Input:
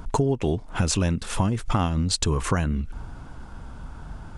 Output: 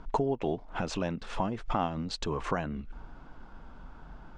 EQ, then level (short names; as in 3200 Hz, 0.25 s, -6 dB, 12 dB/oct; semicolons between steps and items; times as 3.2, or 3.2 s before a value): bell 88 Hz -14.5 dB 1.2 oct; dynamic EQ 710 Hz, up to +6 dB, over -43 dBFS, Q 1.6; air absorption 160 m; -5.5 dB